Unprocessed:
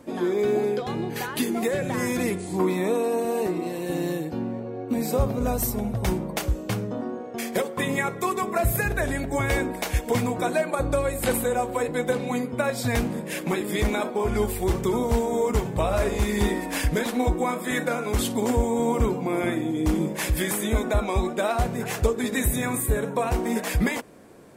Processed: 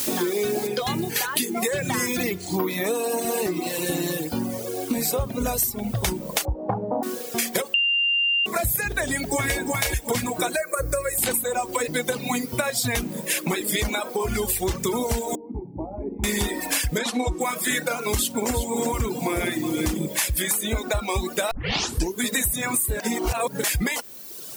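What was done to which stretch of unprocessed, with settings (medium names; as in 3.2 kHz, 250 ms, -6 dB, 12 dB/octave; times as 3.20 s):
0.67 s: noise floor step -44 dB -52 dB
2.06–2.86 s: careless resampling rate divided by 3×, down filtered, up hold
6.45–7.03 s: resonant low-pass 830 Hz, resonance Q 5.7
7.74–8.46 s: bleep 2.79 kHz -15.5 dBFS
9.03–9.59 s: echo throw 350 ms, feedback 35%, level -3 dB
10.56–11.18 s: static phaser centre 860 Hz, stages 6
13.99–14.50 s: compression 1.5:1, threshold -27 dBFS
15.35–16.24 s: cascade formant filter u
16.98–17.41 s: low-pass 8.7 kHz
17.98–20.19 s: delay 362 ms -8.5 dB
21.51 s: tape start 0.72 s
23.00–23.64 s: reverse
whole clip: reverb removal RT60 1.2 s; treble shelf 2.4 kHz +12 dB; compression, threshold -28 dBFS; trim +6.5 dB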